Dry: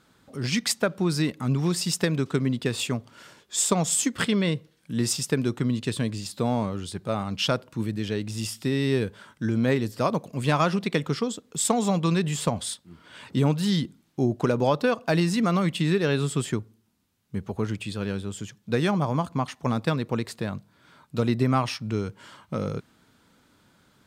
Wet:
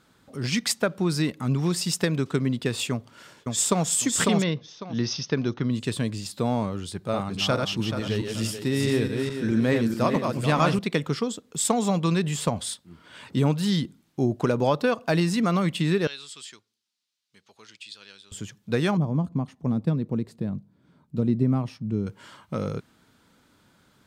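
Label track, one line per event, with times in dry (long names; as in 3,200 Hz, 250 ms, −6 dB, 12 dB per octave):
2.910000	3.880000	delay throw 550 ms, feedback 25%, level −2 dB
4.420000	5.710000	Chebyshev low-pass filter 6,200 Hz, order 8
6.920000	10.790000	feedback delay that plays each chunk backwards 216 ms, feedback 55%, level −4 dB
16.070000	18.320000	resonant band-pass 4,500 Hz, Q 1.5
18.970000	22.070000	drawn EQ curve 120 Hz 0 dB, 180 Hz +5 dB, 1,400 Hz −15 dB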